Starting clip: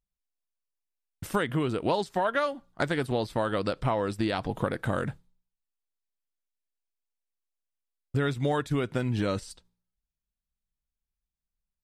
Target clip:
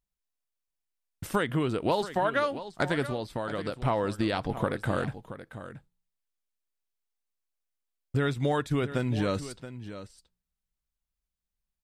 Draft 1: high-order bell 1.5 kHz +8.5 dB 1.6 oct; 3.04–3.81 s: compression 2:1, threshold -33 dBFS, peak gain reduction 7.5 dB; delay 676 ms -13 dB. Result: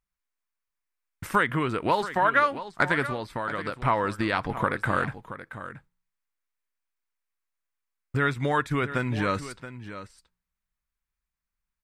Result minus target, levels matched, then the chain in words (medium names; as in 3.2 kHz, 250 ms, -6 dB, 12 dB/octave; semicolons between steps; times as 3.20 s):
2 kHz band +5.0 dB
3.04–3.81 s: compression 2:1, threshold -33 dBFS, peak gain reduction 6 dB; delay 676 ms -13 dB